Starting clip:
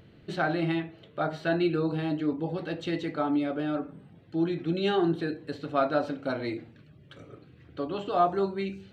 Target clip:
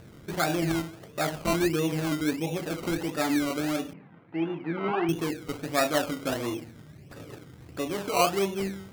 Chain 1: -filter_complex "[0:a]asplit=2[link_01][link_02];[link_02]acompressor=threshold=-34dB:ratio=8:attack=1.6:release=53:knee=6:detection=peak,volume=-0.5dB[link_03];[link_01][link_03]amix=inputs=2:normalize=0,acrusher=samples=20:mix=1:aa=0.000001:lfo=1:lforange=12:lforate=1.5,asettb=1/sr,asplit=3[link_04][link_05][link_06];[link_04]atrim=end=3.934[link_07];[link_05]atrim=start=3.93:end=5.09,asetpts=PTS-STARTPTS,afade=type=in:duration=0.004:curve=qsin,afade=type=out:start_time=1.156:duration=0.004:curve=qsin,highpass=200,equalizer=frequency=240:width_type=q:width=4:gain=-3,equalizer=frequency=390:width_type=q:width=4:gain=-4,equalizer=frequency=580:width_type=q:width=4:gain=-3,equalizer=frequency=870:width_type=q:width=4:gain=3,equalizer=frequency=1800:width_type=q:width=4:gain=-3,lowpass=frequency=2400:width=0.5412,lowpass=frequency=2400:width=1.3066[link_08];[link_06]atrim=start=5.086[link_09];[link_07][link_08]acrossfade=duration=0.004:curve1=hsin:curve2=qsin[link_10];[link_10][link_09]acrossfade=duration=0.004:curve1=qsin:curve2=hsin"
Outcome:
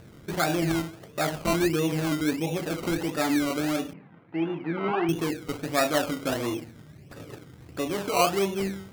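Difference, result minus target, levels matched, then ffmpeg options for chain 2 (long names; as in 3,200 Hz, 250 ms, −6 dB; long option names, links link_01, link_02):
downward compressor: peak gain reduction −9 dB
-filter_complex "[0:a]asplit=2[link_01][link_02];[link_02]acompressor=threshold=-44dB:ratio=8:attack=1.6:release=53:knee=6:detection=peak,volume=-0.5dB[link_03];[link_01][link_03]amix=inputs=2:normalize=0,acrusher=samples=20:mix=1:aa=0.000001:lfo=1:lforange=12:lforate=1.5,asettb=1/sr,asplit=3[link_04][link_05][link_06];[link_04]atrim=end=3.934[link_07];[link_05]atrim=start=3.93:end=5.09,asetpts=PTS-STARTPTS,afade=type=in:duration=0.004:curve=qsin,afade=type=out:start_time=1.156:duration=0.004:curve=qsin,highpass=200,equalizer=frequency=240:width_type=q:width=4:gain=-3,equalizer=frequency=390:width_type=q:width=4:gain=-4,equalizer=frequency=580:width_type=q:width=4:gain=-3,equalizer=frequency=870:width_type=q:width=4:gain=3,equalizer=frequency=1800:width_type=q:width=4:gain=-3,lowpass=frequency=2400:width=0.5412,lowpass=frequency=2400:width=1.3066[link_08];[link_06]atrim=start=5.086[link_09];[link_07][link_08]acrossfade=duration=0.004:curve1=hsin:curve2=qsin[link_10];[link_10][link_09]acrossfade=duration=0.004:curve1=qsin:curve2=hsin"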